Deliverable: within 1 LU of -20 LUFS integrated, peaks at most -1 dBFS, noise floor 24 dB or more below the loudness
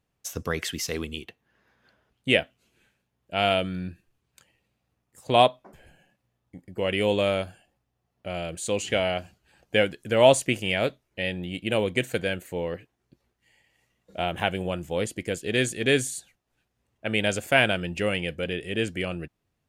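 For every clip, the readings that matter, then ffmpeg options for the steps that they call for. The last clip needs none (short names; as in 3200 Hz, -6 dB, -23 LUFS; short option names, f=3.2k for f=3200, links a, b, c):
loudness -26.0 LUFS; peak -3.0 dBFS; loudness target -20.0 LUFS
-> -af "volume=6dB,alimiter=limit=-1dB:level=0:latency=1"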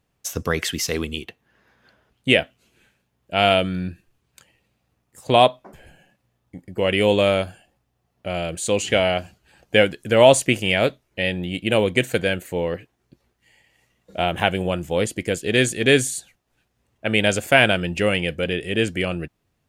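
loudness -20.5 LUFS; peak -1.0 dBFS; noise floor -72 dBFS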